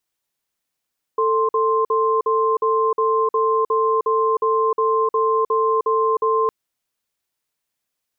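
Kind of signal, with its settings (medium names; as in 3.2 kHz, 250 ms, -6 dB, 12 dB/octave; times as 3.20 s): cadence 444 Hz, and 1.05 kHz, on 0.31 s, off 0.05 s, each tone -18 dBFS 5.31 s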